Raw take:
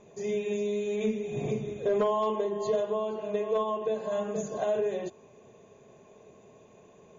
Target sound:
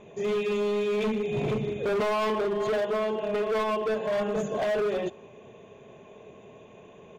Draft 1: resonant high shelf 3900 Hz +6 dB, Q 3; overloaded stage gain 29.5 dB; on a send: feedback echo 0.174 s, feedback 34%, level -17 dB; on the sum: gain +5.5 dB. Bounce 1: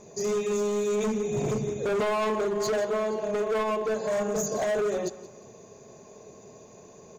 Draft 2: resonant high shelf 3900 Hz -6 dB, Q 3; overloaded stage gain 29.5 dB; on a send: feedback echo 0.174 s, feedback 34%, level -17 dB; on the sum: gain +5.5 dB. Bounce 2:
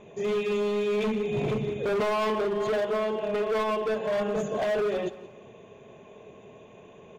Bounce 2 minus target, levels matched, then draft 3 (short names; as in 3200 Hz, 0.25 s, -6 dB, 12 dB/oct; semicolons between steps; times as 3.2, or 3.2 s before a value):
echo-to-direct +11.5 dB
resonant high shelf 3900 Hz -6 dB, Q 3; overloaded stage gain 29.5 dB; on a send: feedback echo 0.174 s, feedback 34%, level -28.5 dB; on the sum: gain +5.5 dB